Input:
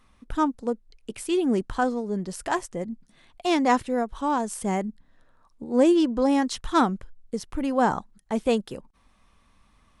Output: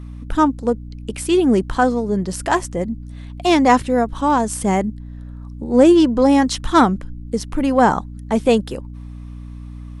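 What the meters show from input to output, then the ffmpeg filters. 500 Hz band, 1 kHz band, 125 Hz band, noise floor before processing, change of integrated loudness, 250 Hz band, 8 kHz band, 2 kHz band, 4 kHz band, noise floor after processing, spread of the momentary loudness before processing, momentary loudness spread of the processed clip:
+8.0 dB, +8.0 dB, +11.5 dB, −62 dBFS, +8.0 dB, +8.0 dB, +8.0 dB, +8.0 dB, +8.0 dB, −33 dBFS, 15 LU, 22 LU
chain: -af "acontrast=50,aeval=exprs='val(0)+0.02*(sin(2*PI*60*n/s)+sin(2*PI*2*60*n/s)/2+sin(2*PI*3*60*n/s)/3+sin(2*PI*4*60*n/s)/4+sin(2*PI*5*60*n/s)/5)':channel_layout=same,volume=2.5dB"

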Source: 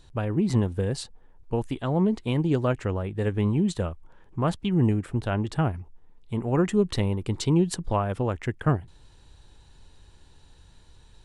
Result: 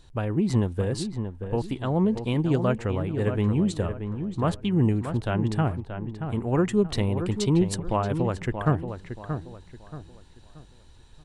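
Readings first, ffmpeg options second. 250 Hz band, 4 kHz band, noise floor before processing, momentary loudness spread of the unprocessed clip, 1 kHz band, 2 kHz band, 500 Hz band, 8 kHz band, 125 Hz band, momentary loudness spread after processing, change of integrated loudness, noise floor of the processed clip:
+0.5 dB, 0.0 dB, −54 dBFS, 8 LU, +0.5 dB, +0.5 dB, +0.5 dB, 0.0 dB, +0.5 dB, 11 LU, 0.0 dB, −52 dBFS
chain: -filter_complex "[0:a]asplit=2[link_01][link_02];[link_02]adelay=629,lowpass=frequency=2300:poles=1,volume=-8dB,asplit=2[link_03][link_04];[link_04]adelay=629,lowpass=frequency=2300:poles=1,volume=0.35,asplit=2[link_05][link_06];[link_06]adelay=629,lowpass=frequency=2300:poles=1,volume=0.35,asplit=2[link_07][link_08];[link_08]adelay=629,lowpass=frequency=2300:poles=1,volume=0.35[link_09];[link_01][link_03][link_05][link_07][link_09]amix=inputs=5:normalize=0"

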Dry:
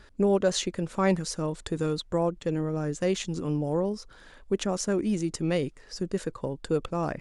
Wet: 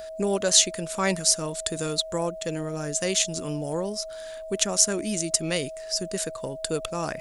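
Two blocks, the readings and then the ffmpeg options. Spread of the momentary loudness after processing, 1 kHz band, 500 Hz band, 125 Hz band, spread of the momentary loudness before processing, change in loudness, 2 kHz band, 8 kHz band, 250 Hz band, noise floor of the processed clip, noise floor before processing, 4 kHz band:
12 LU, +0.5 dB, −0.5 dB, −3.5 dB, 7 LU, +3.5 dB, +5.0 dB, +15.0 dB, −3.0 dB, −38 dBFS, −53 dBFS, +11.0 dB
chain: -af "aeval=exprs='val(0)+0.02*sin(2*PI*640*n/s)':channel_layout=same,crystalizer=i=8.5:c=0,volume=-3.5dB"

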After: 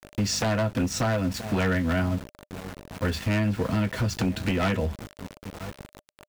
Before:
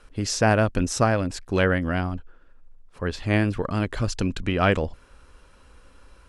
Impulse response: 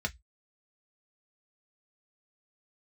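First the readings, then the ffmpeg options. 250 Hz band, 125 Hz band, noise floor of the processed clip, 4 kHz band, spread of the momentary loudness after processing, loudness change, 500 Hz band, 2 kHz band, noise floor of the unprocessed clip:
−0.5 dB, −1.0 dB, −77 dBFS, 0.0 dB, 16 LU, −2.5 dB, −4.5 dB, −4.0 dB, −53 dBFS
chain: -filter_complex "[0:a]aeval=exprs='val(0)+0.00891*(sin(2*PI*50*n/s)+sin(2*PI*2*50*n/s)/2+sin(2*PI*3*50*n/s)/3+sin(2*PI*4*50*n/s)/4+sin(2*PI*5*50*n/s)/5)':channel_layout=same,highpass=120,asplit=2[link_01][link_02];[link_02]adelay=975,lowpass=frequency=940:poles=1,volume=-21dB,asplit=2[link_03][link_04];[link_04]adelay=975,lowpass=frequency=940:poles=1,volume=0.24[link_05];[link_01][link_03][link_05]amix=inputs=3:normalize=0[link_06];[1:a]atrim=start_sample=2205,atrim=end_sample=3969[link_07];[link_06][link_07]afir=irnorm=-1:irlink=0,aeval=exprs='val(0)*gte(abs(val(0)),0.0224)':channel_layout=same,acompressor=threshold=-21dB:ratio=4,aeval=exprs='0.126*(abs(mod(val(0)/0.126+3,4)-2)-1)':channel_layout=same,bandreject=frequency=600:width=19"

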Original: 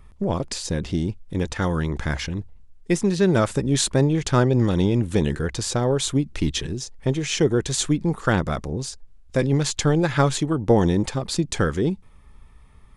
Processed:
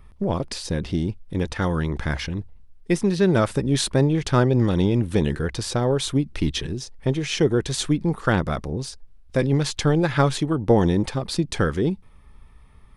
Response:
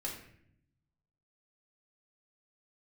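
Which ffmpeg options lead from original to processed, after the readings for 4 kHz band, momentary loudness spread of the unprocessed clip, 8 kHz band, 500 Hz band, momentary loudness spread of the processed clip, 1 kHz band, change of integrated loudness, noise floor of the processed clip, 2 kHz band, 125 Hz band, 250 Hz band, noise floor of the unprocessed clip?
−0.5 dB, 9 LU, −4.5 dB, 0.0 dB, 9 LU, 0.0 dB, 0.0 dB, −49 dBFS, 0.0 dB, 0.0 dB, 0.0 dB, −49 dBFS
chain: -af "equalizer=frequency=7100:width=3.1:gain=-8"

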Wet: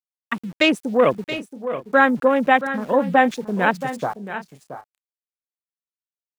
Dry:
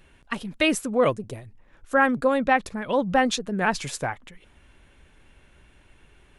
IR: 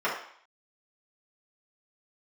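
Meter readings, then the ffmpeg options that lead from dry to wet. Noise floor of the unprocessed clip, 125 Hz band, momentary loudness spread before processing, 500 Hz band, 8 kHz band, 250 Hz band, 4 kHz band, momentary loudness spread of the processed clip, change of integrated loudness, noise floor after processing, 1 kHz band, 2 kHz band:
−58 dBFS, +1.5 dB, 14 LU, +5.0 dB, can't be measured, +4.0 dB, +3.0 dB, 14 LU, +4.0 dB, below −85 dBFS, +5.0 dB, +4.5 dB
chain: -af "afwtdn=0.0316,highpass=frequency=150:width=0.5412,highpass=frequency=150:width=1.3066,bass=frequency=250:gain=-1,treble=frequency=4000:gain=3,aeval=exprs='val(0)*gte(abs(val(0)),0.00562)':channel_layout=same,aecho=1:1:676|706:0.266|0.106,volume=4.5dB"

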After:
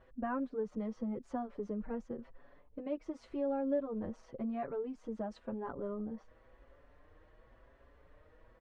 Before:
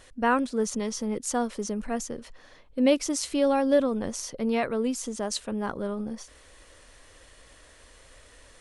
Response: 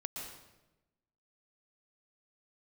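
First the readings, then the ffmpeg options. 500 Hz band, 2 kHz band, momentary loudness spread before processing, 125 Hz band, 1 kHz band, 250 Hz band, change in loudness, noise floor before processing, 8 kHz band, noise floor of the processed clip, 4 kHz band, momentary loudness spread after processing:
−11.5 dB, −18.0 dB, 10 LU, −8.5 dB, −13.0 dB, −11.0 dB, −12.0 dB, −54 dBFS, below −35 dB, −64 dBFS, below −25 dB, 9 LU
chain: -filter_complex "[0:a]lowpass=1200,acompressor=threshold=-30dB:ratio=2.5,asplit=2[link_01][link_02];[link_02]adelay=5.7,afreqshift=0.93[link_03];[link_01][link_03]amix=inputs=2:normalize=1,volume=-3dB"

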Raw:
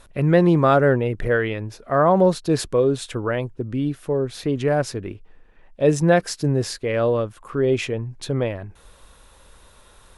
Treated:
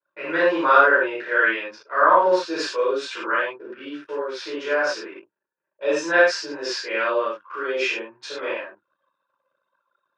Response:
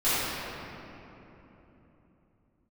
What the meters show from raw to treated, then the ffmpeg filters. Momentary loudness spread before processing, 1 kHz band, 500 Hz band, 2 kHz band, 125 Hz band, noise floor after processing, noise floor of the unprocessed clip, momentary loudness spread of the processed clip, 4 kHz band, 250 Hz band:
12 LU, +4.0 dB, −2.5 dB, +8.5 dB, below −30 dB, −82 dBFS, −52 dBFS, 16 LU, +3.0 dB, −9.5 dB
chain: -filter_complex "[1:a]atrim=start_sample=2205,afade=type=out:start_time=0.21:duration=0.01,atrim=end_sample=9702,asetrate=57330,aresample=44100[link_01];[0:a][link_01]afir=irnorm=-1:irlink=0,anlmdn=25.1,highpass=frequency=390:width=0.5412,highpass=frequency=390:width=1.3066,equalizer=frequency=440:width_type=q:width=4:gain=-8,equalizer=frequency=720:width_type=q:width=4:gain=-9,equalizer=frequency=1000:width_type=q:width=4:gain=6,equalizer=frequency=1500:width_type=q:width=4:gain=9,equalizer=frequency=2500:width_type=q:width=4:gain=5,equalizer=frequency=5200:width_type=q:width=4:gain=4,lowpass=frequency=6200:width=0.5412,lowpass=frequency=6200:width=1.3066,volume=-9dB"

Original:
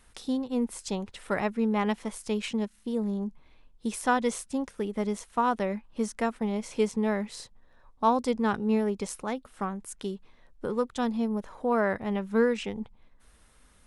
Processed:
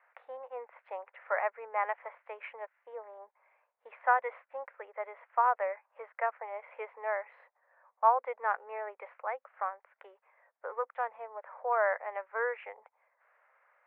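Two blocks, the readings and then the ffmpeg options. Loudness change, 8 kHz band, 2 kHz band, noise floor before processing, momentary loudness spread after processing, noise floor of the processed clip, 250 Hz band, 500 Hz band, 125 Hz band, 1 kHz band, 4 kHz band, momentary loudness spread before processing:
−4.5 dB, below −40 dB, −0.5 dB, −60 dBFS, 18 LU, −80 dBFS, below −40 dB, −6.5 dB, below −40 dB, 0.0 dB, below −20 dB, 10 LU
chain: -af "asuperpass=centerf=1100:order=12:qfactor=0.64"

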